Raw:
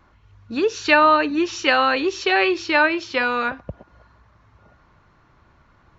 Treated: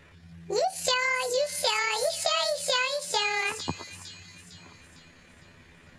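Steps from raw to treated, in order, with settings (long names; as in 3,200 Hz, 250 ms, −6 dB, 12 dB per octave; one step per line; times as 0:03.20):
pitch shift by two crossfaded delay taps +9 semitones
downward compressor 6 to 1, threshold −27 dBFS, peak gain reduction 15.5 dB
on a send: delay with a high-pass on its return 455 ms, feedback 47%, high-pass 4,900 Hz, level −4 dB
on the sum: level +3 dB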